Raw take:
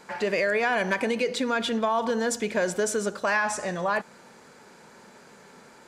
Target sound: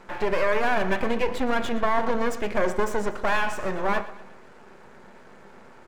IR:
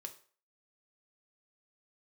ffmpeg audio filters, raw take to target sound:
-filter_complex "[0:a]lowpass=frequency=3900:poles=1,aeval=exprs='max(val(0),0)':channel_layout=same,aecho=1:1:119|238|357|476:0.15|0.0718|0.0345|0.0165,asplit=2[link_01][link_02];[1:a]atrim=start_sample=2205,lowpass=2600[link_03];[link_02][link_03]afir=irnorm=-1:irlink=0,volume=6dB[link_04];[link_01][link_04]amix=inputs=2:normalize=0"

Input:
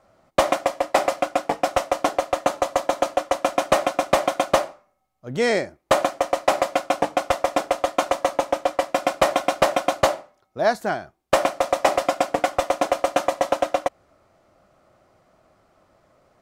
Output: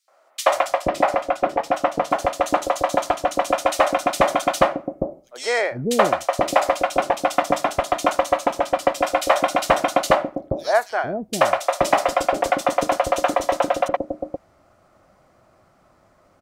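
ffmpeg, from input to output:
ffmpeg -i in.wav -filter_complex "[0:a]asettb=1/sr,asplit=3[link_01][link_02][link_03];[link_01]atrim=end=0.894[link_04];[link_02]atrim=start=0.89:end=2.11,asetpts=PTS-STARTPTS,afade=type=in:duration=0.004:curve=qsin,afade=type=out:start_time=1.216:duration=0.004:curve=qsin,highshelf=frequency=3600:gain=-10.5[link_05];[link_03]atrim=start=2.106[link_06];[link_04][link_05]acrossfade=duration=0.004:curve1=hsin:curve2=qsin[link_07];[link_07][link_06]acrossfade=duration=0.004:curve1=qsin:curve2=hsin,acrossover=split=470|3300[link_08][link_09][link_10];[link_09]adelay=80[link_11];[link_08]adelay=480[link_12];[link_12][link_11][link_10]amix=inputs=3:normalize=0,volume=3.5dB" out.wav

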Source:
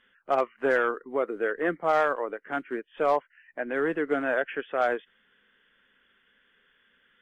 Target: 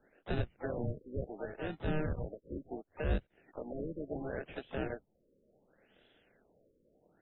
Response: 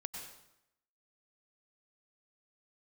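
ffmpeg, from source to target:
-filter_complex "[0:a]acrossover=split=2000[link_01][link_02];[link_01]acrusher=samples=41:mix=1:aa=0.000001[link_03];[link_03][link_02]amix=inputs=2:normalize=0,acrossover=split=170[link_04][link_05];[link_05]acompressor=threshold=-48dB:ratio=2[link_06];[link_04][link_06]amix=inputs=2:normalize=0,asplit=4[link_07][link_08][link_09][link_10];[link_08]asetrate=35002,aresample=44100,atempo=1.25992,volume=-16dB[link_11];[link_09]asetrate=55563,aresample=44100,atempo=0.793701,volume=-11dB[link_12];[link_10]asetrate=88200,aresample=44100,atempo=0.5,volume=-17dB[link_13];[link_07][link_11][link_12][link_13]amix=inputs=4:normalize=0,afftfilt=real='re*lt(b*sr/1024,570*pow(4100/570,0.5+0.5*sin(2*PI*0.7*pts/sr)))':imag='im*lt(b*sr/1024,570*pow(4100/570,0.5+0.5*sin(2*PI*0.7*pts/sr)))':win_size=1024:overlap=0.75"

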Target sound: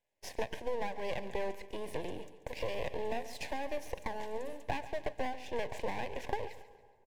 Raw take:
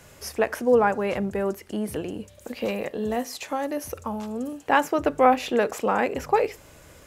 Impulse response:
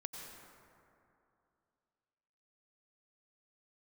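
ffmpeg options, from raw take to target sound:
-filter_complex "[0:a]acrossover=split=9500[link_01][link_02];[link_02]acompressor=threshold=-54dB:ratio=4:attack=1:release=60[link_03];[link_01][link_03]amix=inputs=2:normalize=0,agate=range=-32dB:threshold=-40dB:ratio=16:detection=peak,acrossover=split=470 2300:gain=0.112 1 0.224[link_04][link_05][link_06];[link_04][link_05][link_06]amix=inputs=3:normalize=0,acompressor=threshold=-34dB:ratio=12,aeval=exprs='max(val(0),0)':channel_layout=same,asuperstop=centerf=1300:order=4:qfactor=1.8,aecho=1:1:140|280|420|560:0.178|0.0711|0.0285|0.0114,asplit=2[link_07][link_08];[1:a]atrim=start_sample=2205,adelay=124[link_09];[link_08][link_09]afir=irnorm=-1:irlink=0,volume=-18dB[link_10];[link_07][link_10]amix=inputs=2:normalize=0,volume=6dB"

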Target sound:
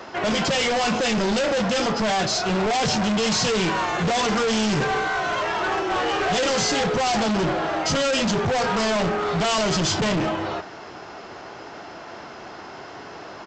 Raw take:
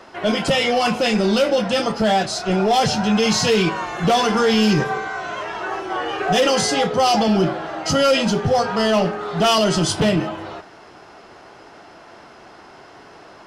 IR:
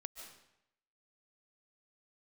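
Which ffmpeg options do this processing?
-af "highpass=46,aresample=16000,asoftclip=type=hard:threshold=-25.5dB,aresample=44100,volume=5dB"

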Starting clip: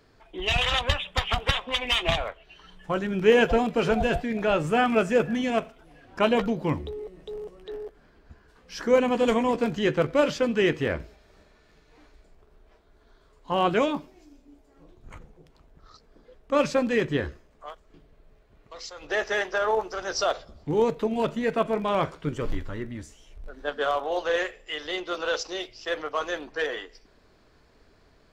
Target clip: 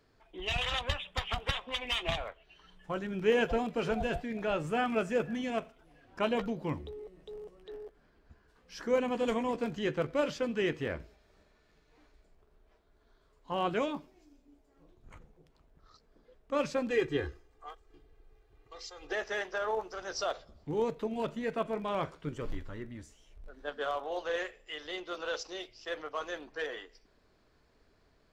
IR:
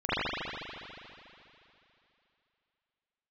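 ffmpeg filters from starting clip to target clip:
-filter_complex "[0:a]asettb=1/sr,asplit=3[link_01][link_02][link_03];[link_01]atrim=end=16.904[link_04];[link_02]atrim=start=16.9:end=19.13,asetpts=PTS-STARTPTS,afade=type=in:duration=0.004:curve=qsin,afade=type=out:start_time=2.226:duration=0.004:curve=qsin,aecho=1:1:2.5:0.87,atrim=end_sample=98343[link_05];[link_03]atrim=start=19.126[link_06];[link_04][link_05]acrossfade=duration=0.004:curve1=hsin:curve2=qsin[link_07];[link_07][link_06]acrossfade=duration=0.004:curve1=qsin:curve2=hsin,volume=-8.5dB"

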